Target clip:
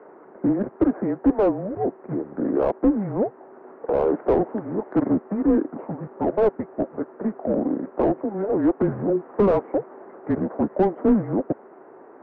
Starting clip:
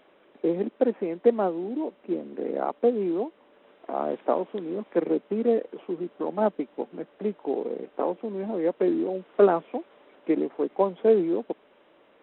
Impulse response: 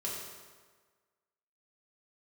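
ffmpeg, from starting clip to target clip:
-filter_complex "[0:a]highpass=f=570:t=q:w=0.5412,highpass=f=570:t=q:w=1.307,lowpass=f=2k:t=q:w=0.5176,lowpass=f=2k:t=q:w=0.7071,lowpass=f=2k:t=q:w=1.932,afreqshift=-200,asplit=2[a][b];[b]highpass=f=720:p=1,volume=25dB,asoftclip=type=tanh:threshold=-13.5dB[c];[a][c]amix=inputs=2:normalize=0,lowpass=f=1k:p=1,volume=-6dB,tiltshelf=f=930:g=7.5"

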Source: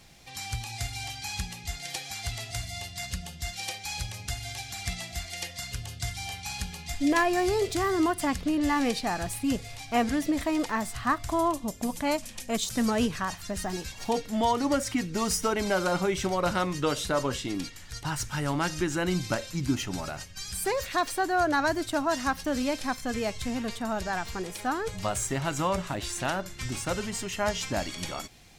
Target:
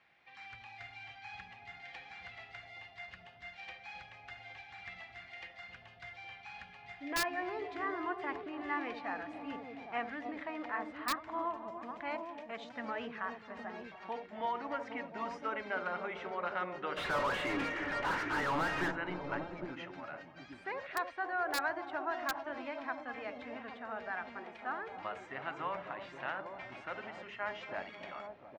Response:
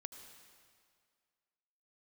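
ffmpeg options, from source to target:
-filter_complex "[0:a]lowpass=f=2k:w=0.5412,lowpass=f=2k:w=1.3066,aderivative,asplit=3[a][b][c];[a]afade=t=out:st=16.96:d=0.02[d];[b]asplit=2[e][f];[f]highpass=f=720:p=1,volume=36dB,asoftclip=type=tanh:threshold=-31.5dB[g];[e][g]amix=inputs=2:normalize=0,lowpass=f=1.1k:p=1,volume=-6dB,afade=t=in:st=16.96:d=0.02,afade=t=out:st=18.9:d=0.02[h];[c]afade=t=in:st=18.9:d=0.02[i];[d][h][i]amix=inputs=3:normalize=0,acrossover=split=970[j][k];[j]aecho=1:1:72|267|296|538|706|813:0.447|0.282|0.422|0.224|0.316|0.562[l];[k]aeval=exprs='(mod(59.6*val(0)+1,2)-1)/59.6':c=same[m];[l][m]amix=inputs=2:normalize=0,volume=8dB"

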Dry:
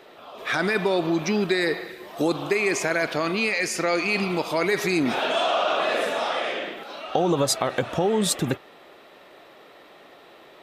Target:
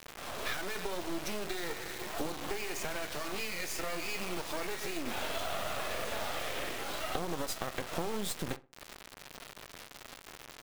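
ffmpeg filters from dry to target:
-filter_complex "[0:a]lowshelf=f=120:g=-9,acompressor=threshold=-33dB:ratio=16,flanger=delay=9.2:depth=2.5:regen=-68:speed=0.98:shape=sinusoidal,acrusher=bits=5:dc=4:mix=0:aa=0.000001,asplit=2[a][b];[b]adelay=63,lowpass=f=1.9k:p=1,volume=-17.5dB,asplit=2[c][d];[d]adelay=63,lowpass=f=1.9k:p=1,volume=0.31,asplit=2[e][f];[f]adelay=63,lowpass=f=1.9k:p=1,volume=0.31[g];[a][c][e][g]amix=inputs=4:normalize=0,volume=8dB"

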